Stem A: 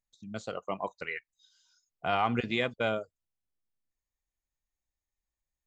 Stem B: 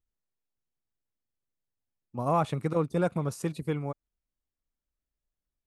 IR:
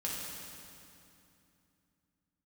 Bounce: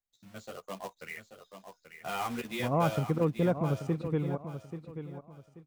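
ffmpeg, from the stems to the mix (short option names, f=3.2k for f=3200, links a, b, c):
-filter_complex "[0:a]acrossover=split=170[a][b];[a]acompressor=threshold=-45dB:ratio=6[c];[c][b]amix=inputs=2:normalize=0,acrusher=bits=2:mode=log:mix=0:aa=0.000001,asplit=2[d][e];[e]adelay=11.6,afreqshift=-1.5[f];[d][f]amix=inputs=2:normalize=1,volume=-4dB,asplit=2[g][h];[h]volume=-9dB[i];[1:a]lowpass=5.4k,tiltshelf=f=900:g=4.5,adelay=450,volume=-3.5dB,asplit=2[j][k];[k]volume=-10.5dB[l];[i][l]amix=inputs=2:normalize=0,aecho=0:1:834|1668|2502|3336:1|0.28|0.0784|0.022[m];[g][j][m]amix=inputs=3:normalize=0"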